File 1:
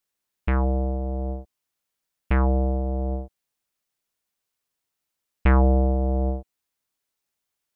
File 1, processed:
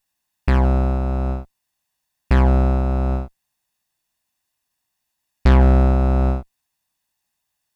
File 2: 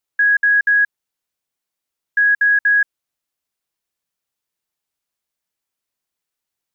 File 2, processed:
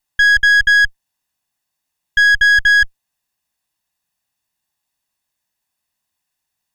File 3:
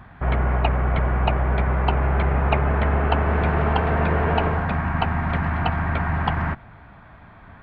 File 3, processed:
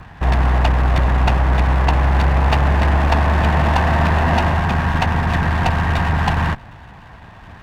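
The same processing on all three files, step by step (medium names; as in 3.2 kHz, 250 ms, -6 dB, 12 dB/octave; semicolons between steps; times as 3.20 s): comb filter that takes the minimum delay 1.1 ms; sine folder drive 6 dB, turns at -5 dBFS; trim -3 dB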